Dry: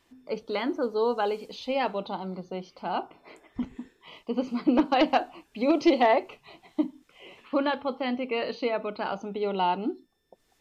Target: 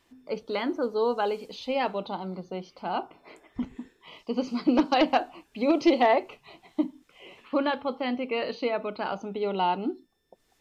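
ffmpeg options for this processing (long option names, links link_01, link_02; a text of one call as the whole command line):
ffmpeg -i in.wav -filter_complex "[0:a]asettb=1/sr,asplit=3[link_01][link_02][link_03];[link_01]atrim=end=4.194[link_04];[link_02]atrim=start=4.19:end=4.99,asetpts=PTS-STARTPTS,afade=type=in:duration=0.004:curve=qsin,afade=type=out:start_time=0.796:duration=0.004:curve=qsin,equalizer=frequency=5300:width=1.5:gain=9[link_05];[link_03]atrim=start=4.986[link_06];[link_04][link_05]acrossfade=duration=0.004:curve1=hsin:curve2=qsin[link_07];[link_07][link_06]acrossfade=duration=0.004:curve1=qsin:curve2=hsin" out.wav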